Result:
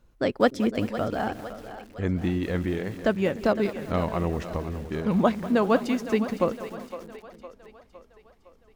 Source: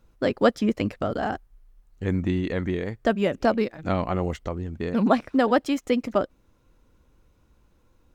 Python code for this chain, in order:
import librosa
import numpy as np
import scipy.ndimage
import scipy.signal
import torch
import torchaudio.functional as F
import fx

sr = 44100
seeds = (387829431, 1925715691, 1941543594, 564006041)

y = fx.speed_glide(x, sr, from_pct=104, to_pct=82)
y = fx.echo_split(y, sr, split_hz=380.0, low_ms=303, high_ms=510, feedback_pct=52, wet_db=-12.5)
y = fx.echo_crushed(y, sr, ms=194, feedback_pct=55, bits=6, wet_db=-15)
y = F.gain(torch.from_numpy(y), -1.5).numpy()